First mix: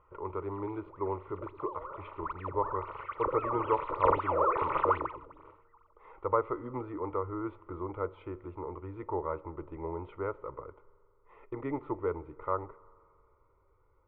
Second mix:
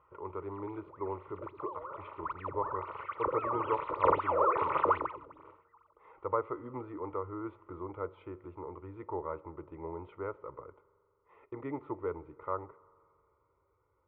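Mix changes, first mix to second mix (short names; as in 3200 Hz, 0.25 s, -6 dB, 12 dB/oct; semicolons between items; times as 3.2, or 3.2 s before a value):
speech -3.5 dB; master: add HPF 76 Hz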